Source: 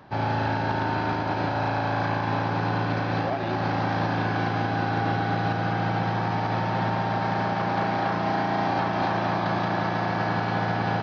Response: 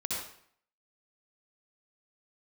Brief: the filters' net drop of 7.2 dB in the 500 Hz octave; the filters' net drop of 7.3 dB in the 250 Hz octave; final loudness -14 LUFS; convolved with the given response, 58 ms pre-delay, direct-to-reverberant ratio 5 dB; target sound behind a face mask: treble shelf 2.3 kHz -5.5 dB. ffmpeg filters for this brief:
-filter_complex "[0:a]equalizer=f=250:t=o:g=-9,equalizer=f=500:t=o:g=-7.5,asplit=2[s0][s1];[1:a]atrim=start_sample=2205,adelay=58[s2];[s1][s2]afir=irnorm=-1:irlink=0,volume=0.335[s3];[s0][s3]amix=inputs=2:normalize=0,highshelf=f=2300:g=-5.5,volume=5.31"

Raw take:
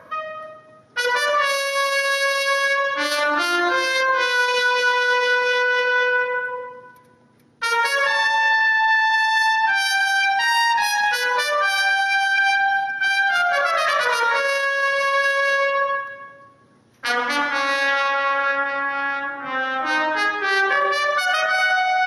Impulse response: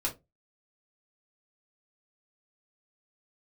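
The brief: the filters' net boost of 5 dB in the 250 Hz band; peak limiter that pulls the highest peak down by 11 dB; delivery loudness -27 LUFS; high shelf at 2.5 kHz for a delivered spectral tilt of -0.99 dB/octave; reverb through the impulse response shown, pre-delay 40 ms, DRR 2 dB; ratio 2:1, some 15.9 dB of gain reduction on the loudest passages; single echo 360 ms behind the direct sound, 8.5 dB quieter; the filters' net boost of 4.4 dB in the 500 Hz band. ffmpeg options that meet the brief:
-filter_complex "[0:a]equalizer=f=250:t=o:g=5,equalizer=f=500:t=o:g=3.5,highshelf=f=2500:g=8.5,acompressor=threshold=0.00708:ratio=2,alimiter=level_in=1.58:limit=0.0631:level=0:latency=1,volume=0.631,aecho=1:1:360:0.376,asplit=2[s0][s1];[1:a]atrim=start_sample=2205,adelay=40[s2];[s1][s2]afir=irnorm=-1:irlink=0,volume=0.473[s3];[s0][s3]amix=inputs=2:normalize=0,volume=1.88"

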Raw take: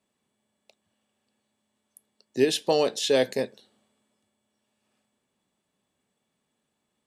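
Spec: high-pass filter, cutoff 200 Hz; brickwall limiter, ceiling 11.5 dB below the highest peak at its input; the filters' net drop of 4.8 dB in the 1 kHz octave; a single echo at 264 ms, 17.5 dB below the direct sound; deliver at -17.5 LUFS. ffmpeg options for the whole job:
-af "highpass=200,equalizer=f=1000:t=o:g=-7,alimiter=limit=0.0794:level=0:latency=1,aecho=1:1:264:0.133,volume=5.62"

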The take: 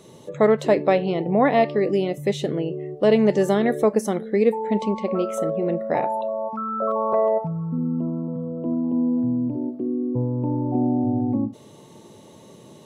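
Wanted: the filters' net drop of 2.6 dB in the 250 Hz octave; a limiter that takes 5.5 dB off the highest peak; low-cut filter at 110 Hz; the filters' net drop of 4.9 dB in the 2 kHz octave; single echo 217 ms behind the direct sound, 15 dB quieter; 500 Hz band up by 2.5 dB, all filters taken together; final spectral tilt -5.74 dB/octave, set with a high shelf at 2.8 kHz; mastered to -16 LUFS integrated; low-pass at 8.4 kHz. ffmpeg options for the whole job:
-af "highpass=110,lowpass=8400,equalizer=f=250:t=o:g=-4,equalizer=f=500:t=o:g=4.5,equalizer=f=2000:t=o:g=-7.5,highshelf=f=2800:g=4.5,alimiter=limit=0.316:level=0:latency=1,aecho=1:1:217:0.178,volume=2.24"

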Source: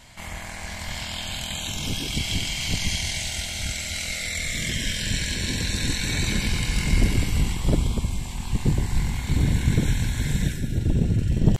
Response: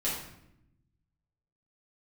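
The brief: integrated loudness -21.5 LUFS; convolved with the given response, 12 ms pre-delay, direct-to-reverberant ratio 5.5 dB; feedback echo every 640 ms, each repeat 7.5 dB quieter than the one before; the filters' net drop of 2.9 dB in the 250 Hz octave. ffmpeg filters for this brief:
-filter_complex "[0:a]equalizer=f=250:t=o:g=-4.5,aecho=1:1:640|1280|1920|2560|3200:0.422|0.177|0.0744|0.0312|0.0131,asplit=2[s0][s1];[1:a]atrim=start_sample=2205,adelay=12[s2];[s1][s2]afir=irnorm=-1:irlink=0,volume=0.251[s3];[s0][s3]amix=inputs=2:normalize=0,volume=1.33"

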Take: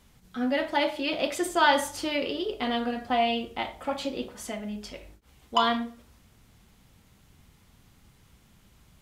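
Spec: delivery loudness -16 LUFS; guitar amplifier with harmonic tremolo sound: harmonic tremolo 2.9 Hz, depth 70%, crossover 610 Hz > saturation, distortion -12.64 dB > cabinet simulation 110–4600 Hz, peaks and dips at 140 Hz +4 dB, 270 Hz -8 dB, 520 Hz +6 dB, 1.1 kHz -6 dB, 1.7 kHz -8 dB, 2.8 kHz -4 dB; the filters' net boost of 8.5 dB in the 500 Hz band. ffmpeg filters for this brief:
-filter_complex "[0:a]equalizer=f=500:t=o:g=7,acrossover=split=610[s0][s1];[s0]aeval=exprs='val(0)*(1-0.7/2+0.7/2*cos(2*PI*2.9*n/s))':c=same[s2];[s1]aeval=exprs='val(0)*(1-0.7/2-0.7/2*cos(2*PI*2.9*n/s))':c=same[s3];[s2][s3]amix=inputs=2:normalize=0,asoftclip=threshold=0.0794,highpass=110,equalizer=f=140:t=q:w=4:g=4,equalizer=f=270:t=q:w=4:g=-8,equalizer=f=520:t=q:w=4:g=6,equalizer=f=1100:t=q:w=4:g=-6,equalizer=f=1700:t=q:w=4:g=-8,equalizer=f=2800:t=q:w=4:g=-4,lowpass=f=4600:w=0.5412,lowpass=f=4600:w=1.3066,volume=5.31"

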